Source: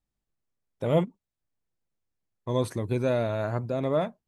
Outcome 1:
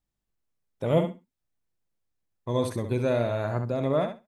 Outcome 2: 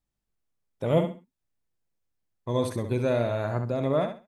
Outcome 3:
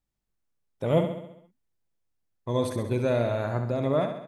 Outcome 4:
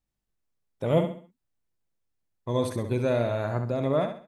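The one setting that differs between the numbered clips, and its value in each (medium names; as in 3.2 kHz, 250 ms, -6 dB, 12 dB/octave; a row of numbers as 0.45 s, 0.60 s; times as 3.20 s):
feedback delay, feedback: 16%, 24%, 56%, 35%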